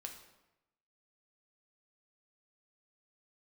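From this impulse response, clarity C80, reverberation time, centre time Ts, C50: 10.0 dB, 0.95 s, 23 ms, 7.5 dB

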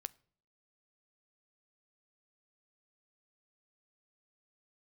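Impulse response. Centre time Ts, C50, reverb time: 2 ms, 24.5 dB, 0.55 s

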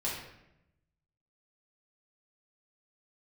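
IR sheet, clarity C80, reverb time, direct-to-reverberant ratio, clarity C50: 5.5 dB, 0.85 s, −7.5 dB, 2.0 dB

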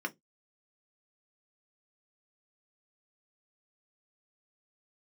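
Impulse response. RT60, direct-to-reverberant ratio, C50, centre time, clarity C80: 0.15 s, 4.5 dB, 26.0 dB, 4 ms, 37.5 dB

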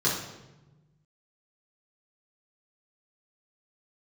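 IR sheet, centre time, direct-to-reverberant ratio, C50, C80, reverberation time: 46 ms, −7.0 dB, 3.5 dB, 7.0 dB, 1.1 s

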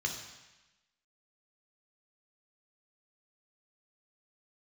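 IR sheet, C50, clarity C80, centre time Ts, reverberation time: 5.5 dB, 8.0 dB, 32 ms, 1.0 s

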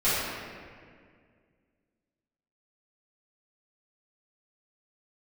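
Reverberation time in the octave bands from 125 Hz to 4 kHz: 2.5, 2.5, 2.2, 1.8, 1.9, 1.3 seconds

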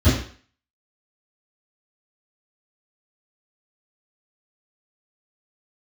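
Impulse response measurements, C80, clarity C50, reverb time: 7.5 dB, 3.0 dB, 0.45 s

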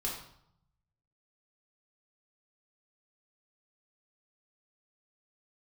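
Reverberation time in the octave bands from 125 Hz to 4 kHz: 1.3, 0.90, 0.70, 0.75, 0.55, 0.55 seconds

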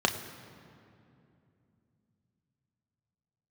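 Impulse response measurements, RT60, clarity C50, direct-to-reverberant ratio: 2.7 s, 10.0 dB, 4.0 dB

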